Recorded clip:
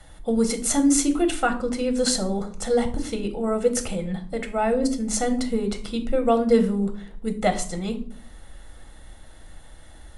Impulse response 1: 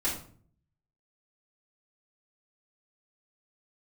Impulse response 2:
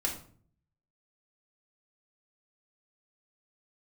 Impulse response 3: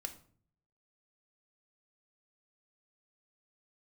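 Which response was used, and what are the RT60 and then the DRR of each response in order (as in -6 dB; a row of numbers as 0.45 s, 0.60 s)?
3; 0.50 s, 0.50 s, 0.50 s; -10.0 dB, -2.0 dB, 6.0 dB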